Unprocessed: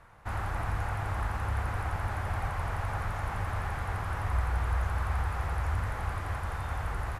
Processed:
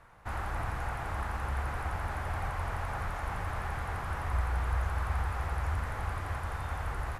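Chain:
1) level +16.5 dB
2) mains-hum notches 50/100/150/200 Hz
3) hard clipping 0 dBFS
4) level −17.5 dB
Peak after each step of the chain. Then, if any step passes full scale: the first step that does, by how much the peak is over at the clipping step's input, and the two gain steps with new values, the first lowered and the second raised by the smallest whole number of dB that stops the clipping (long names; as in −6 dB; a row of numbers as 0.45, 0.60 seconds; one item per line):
−1.5, −2.0, −2.0, −19.5 dBFS
no step passes full scale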